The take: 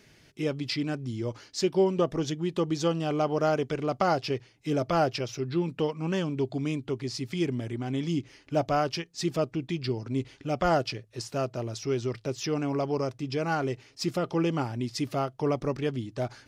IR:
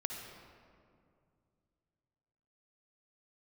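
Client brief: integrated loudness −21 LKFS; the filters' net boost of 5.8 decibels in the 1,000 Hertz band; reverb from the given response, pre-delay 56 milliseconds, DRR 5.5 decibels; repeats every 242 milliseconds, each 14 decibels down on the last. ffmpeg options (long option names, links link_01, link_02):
-filter_complex "[0:a]equalizer=frequency=1000:width_type=o:gain=8.5,aecho=1:1:242|484:0.2|0.0399,asplit=2[link_01][link_02];[1:a]atrim=start_sample=2205,adelay=56[link_03];[link_02][link_03]afir=irnorm=-1:irlink=0,volume=-6.5dB[link_04];[link_01][link_04]amix=inputs=2:normalize=0,volume=5dB"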